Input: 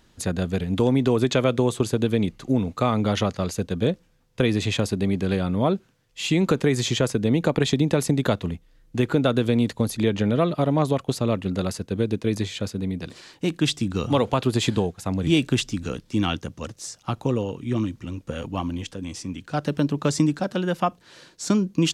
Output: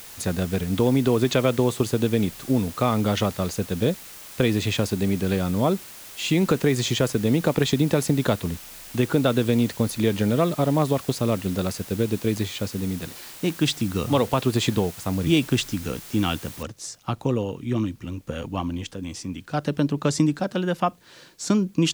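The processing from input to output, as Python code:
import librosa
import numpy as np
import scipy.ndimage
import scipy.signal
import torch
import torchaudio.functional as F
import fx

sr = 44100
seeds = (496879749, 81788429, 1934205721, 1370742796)

y = fx.noise_floor_step(x, sr, seeds[0], at_s=16.63, before_db=-42, after_db=-64, tilt_db=0.0)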